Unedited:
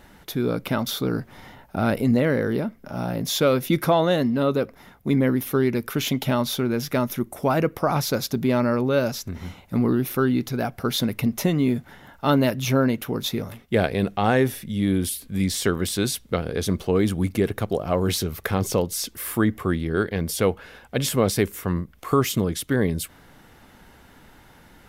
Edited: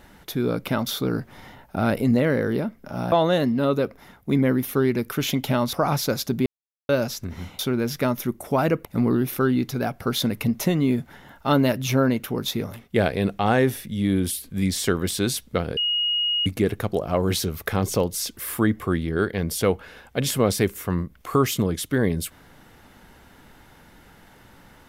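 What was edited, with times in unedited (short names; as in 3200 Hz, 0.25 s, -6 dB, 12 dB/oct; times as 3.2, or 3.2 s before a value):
3.12–3.9 cut
6.51–7.77 move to 9.63
8.5–8.93 mute
16.55–17.24 bleep 2880 Hz -20 dBFS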